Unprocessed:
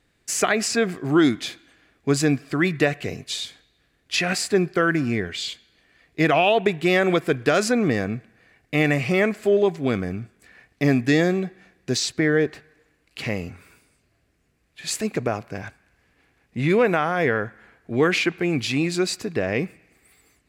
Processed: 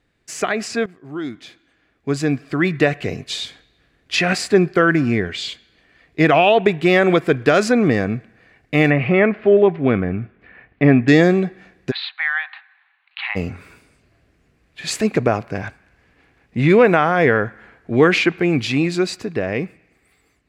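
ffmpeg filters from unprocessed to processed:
-filter_complex "[0:a]asettb=1/sr,asplit=3[s0][s1][s2];[s0]atrim=end=8.904[s3];[s1]atrim=start=8.9:end=11.08,asetpts=PTS-STARTPTS,afade=t=in:d=0.004:c=qsin,afade=t=out:st=2.176:d=0.004:c=qsin,lowpass=f=2900:w=0.5412,lowpass=f=2900:w=1.3066[s4];[s2]atrim=start=11.076[s5];[s3][s4]acrossfade=d=0.004:c1=hsin:c2=qsin[s6];[s6][s5]acrossfade=d=0.004:c1=qsin:c2=hsin,asplit=3[s7][s8][s9];[s7]afade=t=out:st=11.9:d=0.02[s10];[s8]asuperpass=centerf=1800:order=20:qfactor=0.54,afade=t=in:st=11.9:d=0.02,afade=t=out:st=13.35:d=0.02[s11];[s9]afade=t=in:st=13.35:d=0.02[s12];[s10][s11][s12]amix=inputs=3:normalize=0,asplit=2[s13][s14];[s13]atrim=end=0.86,asetpts=PTS-STARTPTS,afade=t=out:st=0.856:d=0.004:c=hsin:silence=0.158489[s15];[s14]atrim=start=0.86,asetpts=PTS-STARTPTS,afade=t=in:d=2.57:silence=0.158489[s16];[s15][s16]concat=n=2:v=0:a=1,highshelf=f=6100:g=-11.5,dynaudnorm=f=230:g=17:m=3.76"

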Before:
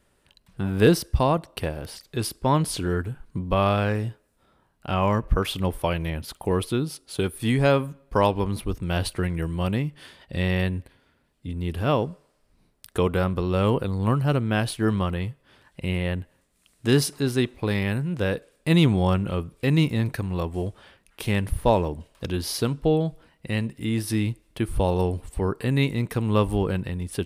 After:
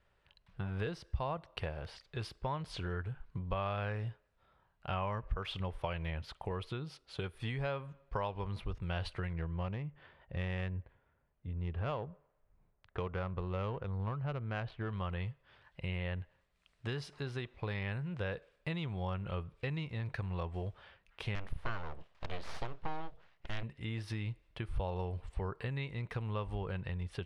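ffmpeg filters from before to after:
-filter_complex "[0:a]asettb=1/sr,asplit=3[s0][s1][s2];[s0]atrim=end=9.334[s3];[s1]atrim=start=9.33:end=14.93,asetpts=PTS-STARTPTS,afade=t=in:d=0.004:c=qsin,afade=t=out:st=5.596:d=0.004:c=qsin,adynamicsmooth=sensitivity=1.5:basefreq=1700[s4];[s2]atrim=start=14.926[s5];[s3][s4]acrossfade=d=0.004:c1=hsin:c2=qsin[s6];[s6][s5]acrossfade=d=0.004:c1=qsin:c2=hsin,asettb=1/sr,asplit=3[s7][s8][s9];[s7]atrim=end=21.354[s10];[s8]atrim=start=21.35:end=23.63,asetpts=PTS-STARTPTS,afade=t=in:d=0.004:c=qsin,afade=t=out:st=2.276:d=0.004:c=qsin,aeval=exprs='abs(val(0))':c=same[s11];[s9]atrim=start=23.626[s12];[s10][s11]acrossfade=d=0.004:c1=hsin:c2=qsin[s13];[s13][s12]acrossfade=d=0.004:c1=qsin:c2=hsin,acompressor=threshold=0.0562:ratio=6,lowpass=3300,equalizer=f=270:t=o:w=1.1:g=-13,volume=0.562"

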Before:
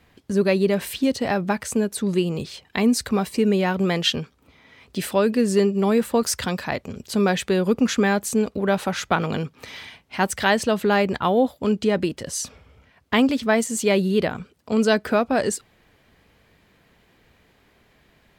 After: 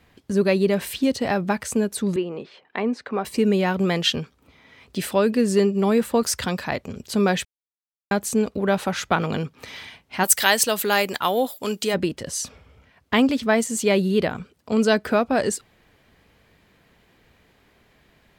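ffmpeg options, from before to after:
-filter_complex "[0:a]asettb=1/sr,asplit=3[s0][s1][s2];[s0]atrim=end=2.164[s3];[s1]atrim=start=2.16:end=3.25,asetpts=PTS-STARTPTS,afade=t=in:d=0.004:c=qsin,afade=t=out:st=1.086:d=0.004:c=qsin,highpass=330,lowpass=2000[s4];[s2]atrim=start=3.246[s5];[s3][s4]acrossfade=d=0.004:c1=hsin:c2=qsin[s6];[s6][s5]acrossfade=d=0.004:c1=qsin:c2=hsin,asplit=3[s7][s8][s9];[s7]afade=t=out:st=10.23:d=0.02[s10];[s8]aemphasis=mode=production:type=riaa,afade=t=in:st=10.23:d=0.02,afade=t=out:st=11.93:d=0.02[s11];[s9]afade=t=in:st=11.93:d=0.02[s12];[s10][s11][s12]amix=inputs=3:normalize=0,asplit=3[s13][s14][s15];[s13]atrim=end=7.45,asetpts=PTS-STARTPTS,afade=t=out:st=7.446:d=0.004:c=hsin[s16];[s14]atrim=start=7.45:end=8.11,asetpts=PTS-STARTPTS,volume=0[s17];[s15]atrim=start=8.11,asetpts=PTS-STARTPTS,afade=t=in:d=0.004:c=hsin[s18];[s16][s17][s18]concat=n=3:v=0:a=1"

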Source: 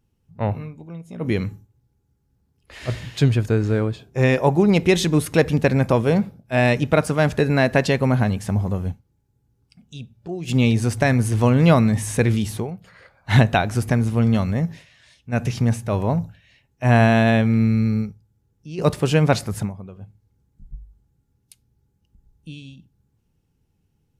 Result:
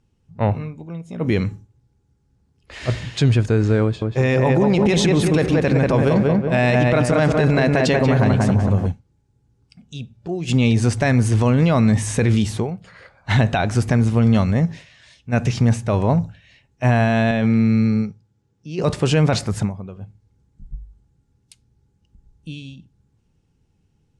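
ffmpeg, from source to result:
-filter_complex "[0:a]asettb=1/sr,asplit=3[s0][s1][s2];[s0]atrim=end=3.834[s3];[s1]atrim=start=3.83:end=8.87,asetpts=PTS-STARTPTS,afade=t=in:d=0.004:c=qsin,afade=t=out:st=5.036:d=0.004:c=qsin,asplit=2[s4][s5];[s5]adelay=185,lowpass=f=2000:p=1,volume=0.708,asplit=2[s6][s7];[s7]adelay=185,lowpass=f=2000:p=1,volume=0.47,asplit=2[s8][s9];[s9]adelay=185,lowpass=f=2000:p=1,volume=0.47,asplit=2[s10][s11];[s11]adelay=185,lowpass=f=2000:p=1,volume=0.47,asplit=2[s12][s13];[s13]adelay=185,lowpass=f=2000:p=1,volume=0.47,asplit=2[s14][s15];[s15]adelay=185,lowpass=f=2000:p=1,volume=0.47[s16];[s4][s6][s8][s10][s12][s14][s16]amix=inputs=7:normalize=0,atrim=end_sample=222264[s17];[s2]atrim=start=8.866[s18];[s3][s17]acrossfade=d=0.004:c1=hsin:c2=qsin[s19];[s19][s18]acrossfade=d=0.004:c1=qsin:c2=hsin,asettb=1/sr,asplit=3[s20][s21][s22];[s20]atrim=end=17.314[s23];[s21]atrim=start=17.31:end=18.84,asetpts=PTS-STARTPTS,afade=t=in:d=0.004:c=qsin,afade=t=out:st=1.526:d=0.004:c=qsin,highpass=120,lowpass=7900[s24];[s22]atrim=start=18.836[s25];[s23][s24]acrossfade=d=0.004:c1=hsin:c2=qsin[s26];[s26][s25]acrossfade=d=0.004:c1=qsin:c2=hsin,alimiter=limit=0.237:level=0:latency=1:release=12,lowpass=f=8900:w=0.5412,lowpass=f=8900:w=1.3066,volume=1.58"

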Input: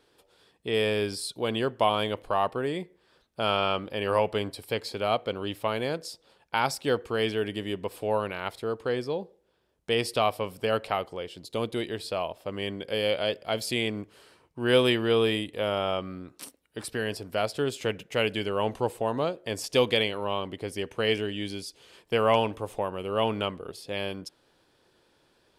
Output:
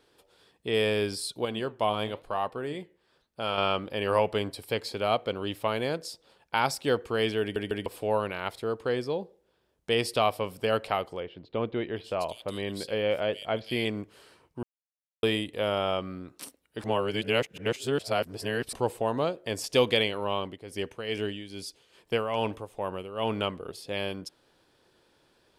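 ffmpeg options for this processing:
-filter_complex "[0:a]asettb=1/sr,asplit=3[s0][s1][s2];[s0]atrim=end=1.454[s3];[s1]atrim=start=1.45:end=3.58,asetpts=PTS-STARTPTS,afade=t=in:d=0.004:c=qsin,afade=t=out:st=2.126:d=0.004:c=qsin,flanger=delay=3.7:depth=6:regen=82:speed=1:shape=sinusoidal[s4];[s2]atrim=start=3.576[s5];[s3][s4]acrossfade=d=0.004:c1=hsin:c2=qsin[s6];[s6][s5]acrossfade=d=0.004:c1=qsin:c2=hsin,asettb=1/sr,asplit=3[s7][s8][s9];[s7]atrim=end=11.204[s10];[s8]atrim=start=11.2:end=13.85,asetpts=PTS-STARTPTS,afade=t=in:d=0.004:c=qsin,afade=t=out:st=2.646:d=0.004:c=qsin,acrossover=split=3000[s11][s12];[s12]adelay=760[s13];[s11][s13]amix=inputs=2:normalize=0,atrim=end_sample=116865[s14];[s9]atrim=start=13.846[s15];[s10][s14]acrossfade=d=0.004:c1=hsin:c2=qsin[s16];[s16][s15]acrossfade=d=0.004:c1=qsin:c2=hsin,asplit=3[s17][s18][s19];[s17]afade=t=out:st=20.39:d=0.02[s20];[s18]tremolo=f=2.4:d=0.7,afade=t=in:st=20.39:d=0.02,afade=t=out:st=23.35:d=0.02[s21];[s19]afade=t=in:st=23.35:d=0.02[s22];[s20][s21][s22]amix=inputs=3:normalize=0,asplit=8[s23][s24][s25][s26][s27][s28][s29][s30];[s23]atrim=end=7.562[s31];[s24]atrim=start=7.408:end=7.562[s32];[s25]atrim=start=7.408:end=7.562[s33];[s26]atrim=start=7.858:end=14.63,asetpts=PTS-STARTPTS,afade=t=out:st=6.768:d=0.004:c=hsin[s34];[s27]atrim=start=14.63:end=15.23,asetpts=PTS-STARTPTS,volume=0[s35];[s28]atrim=start=15.23:end=16.842,asetpts=PTS-STARTPTS,afade=t=in:d=0.004:c=hsin[s36];[s29]atrim=start=16.838:end=18.732,asetpts=PTS-STARTPTS,areverse[s37];[s30]atrim=start=18.728[s38];[s31][s32]acrossfade=d=0.004:c1=hsin:c2=hsin[s39];[s39][s33]acrossfade=d=0.004:c1=hsin:c2=hsin[s40];[s34][s35][s36]concat=n=3:v=0:a=1[s41];[s40][s41]acrossfade=d=0.004:c1=hsin:c2=hsin[s42];[s42][s37]acrossfade=d=0.004:c1=hsin:c2=hsin[s43];[s43][s38]acrossfade=d=0.004:c1=hsin:c2=hsin"

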